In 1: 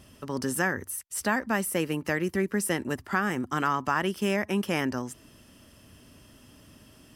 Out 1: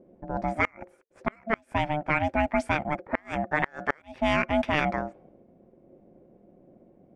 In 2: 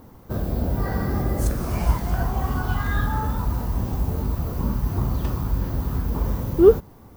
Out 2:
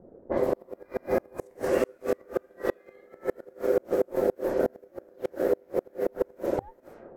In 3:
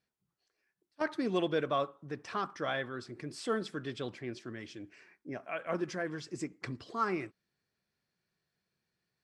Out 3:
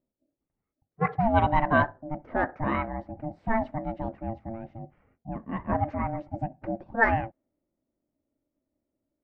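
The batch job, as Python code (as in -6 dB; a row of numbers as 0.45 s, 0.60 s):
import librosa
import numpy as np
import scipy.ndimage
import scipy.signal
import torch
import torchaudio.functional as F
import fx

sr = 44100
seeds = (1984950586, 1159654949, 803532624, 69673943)

y = x * np.sin(2.0 * np.pi * 450.0 * np.arange(len(x)) / sr)
y = fx.graphic_eq(y, sr, hz=(250, 500, 2000, 8000), db=(3, 7, 9, 5))
y = fx.env_lowpass(y, sr, base_hz=330.0, full_db=-17.0)
y = fx.gate_flip(y, sr, shuts_db=-9.0, range_db=-33)
y = y * 10.0 ** (-30 / 20.0) / np.sqrt(np.mean(np.square(y)))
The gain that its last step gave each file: +1.0 dB, -3.5 dB, +9.5 dB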